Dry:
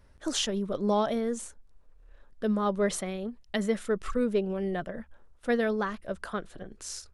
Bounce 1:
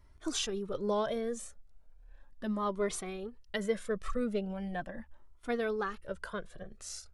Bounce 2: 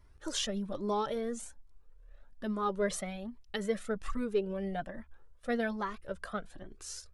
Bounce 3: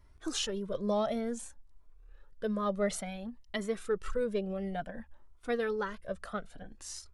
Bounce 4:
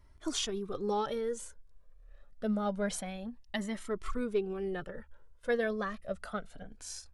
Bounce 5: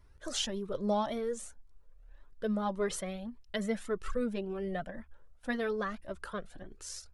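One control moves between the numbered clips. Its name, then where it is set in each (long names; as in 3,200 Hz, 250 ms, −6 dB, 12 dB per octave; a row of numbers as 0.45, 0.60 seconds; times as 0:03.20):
flanger whose copies keep moving one way, speed: 0.38, 1.2, 0.57, 0.26, 1.8 Hertz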